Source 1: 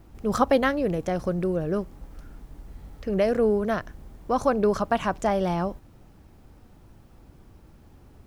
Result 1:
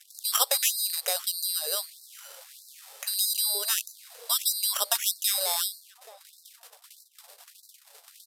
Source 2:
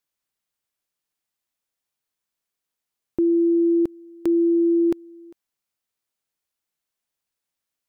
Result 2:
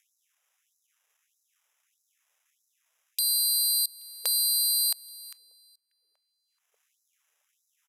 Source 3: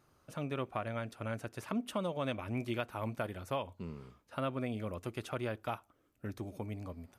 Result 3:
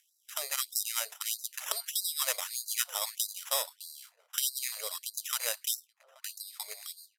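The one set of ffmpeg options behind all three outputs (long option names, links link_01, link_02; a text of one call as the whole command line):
ffmpeg -i in.wav -filter_complex "[0:a]bandreject=frequency=50:width_type=h:width=6,bandreject=frequency=100:width_type=h:width=6,bandreject=frequency=150:width_type=h:width=6,bandreject=frequency=200:width_type=h:width=6,agate=range=-58dB:threshold=-49dB:ratio=16:detection=peak,highpass=51,acrossover=split=250[link_01][link_02];[link_02]acompressor=threshold=-31dB:ratio=2[link_03];[link_01][link_03]amix=inputs=2:normalize=0,asplit=2[link_04][link_05];[link_05]alimiter=limit=-22dB:level=0:latency=1:release=203,volume=-1.5dB[link_06];[link_04][link_06]amix=inputs=2:normalize=0,acompressor=mode=upward:threshold=-35dB:ratio=2.5,acrusher=samples=10:mix=1:aa=0.000001,crystalizer=i=9.5:c=0,asplit=2[link_07][link_08];[link_08]adelay=829,lowpass=frequency=920:poles=1,volume=-17dB,asplit=2[link_09][link_10];[link_10]adelay=829,lowpass=frequency=920:poles=1,volume=0.5,asplit=2[link_11][link_12];[link_12]adelay=829,lowpass=frequency=920:poles=1,volume=0.5,asplit=2[link_13][link_14];[link_14]adelay=829,lowpass=frequency=920:poles=1,volume=0.5[link_15];[link_09][link_11][link_13][link_15]amix=inputs=4:normalize=0[link_16];[link_07][link_16]amix=inputs=2:normalize=0,aresample=32000,aresample=44100,afftfilt=real='re*gte(b*sr/1024,400*pow(3900/400,0.5+0.5*sin(2*PI*1.6*pts/sr)))':imag='im*gte(b*sr/1024,400*pow(3900/400,0.5+0.5*sin(2*PI*1.6*pts/sr)))':win_size=1024:overlap=0.75,volume=-8dB" out.wav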